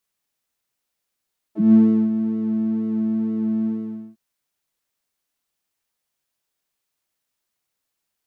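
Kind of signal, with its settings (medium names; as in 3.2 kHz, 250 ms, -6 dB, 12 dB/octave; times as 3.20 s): synth patch with pulse-width modulation A3, oscillator 2 sine, interval +7 st, oscillator 2 level -3 dB, sub -17 dB, filter bandpass, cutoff 160 Hz, Q 4.1, filter envelope 2 oct, filter decay 0.05 s, filter sustain 10%, attack 182 ms, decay 0.36 s, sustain -11 dB, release 0.50 s, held 2.11 s, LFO 2.1 Hz, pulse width 41%, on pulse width 15%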